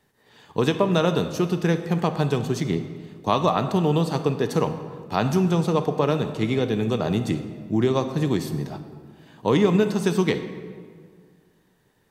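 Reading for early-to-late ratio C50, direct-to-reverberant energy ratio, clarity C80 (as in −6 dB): 10.0 dB, 9.0 dB, 11.0 dB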